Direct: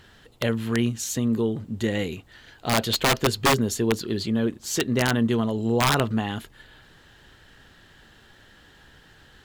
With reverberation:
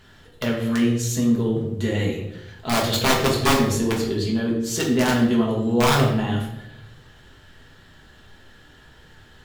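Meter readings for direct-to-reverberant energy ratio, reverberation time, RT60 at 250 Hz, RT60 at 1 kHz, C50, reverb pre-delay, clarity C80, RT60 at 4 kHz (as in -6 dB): -3.5 dB, 0.90 s, 1.1 s, 0.75 s, 5.0 dB, 5 ms, 7.5 dB, 0.60 s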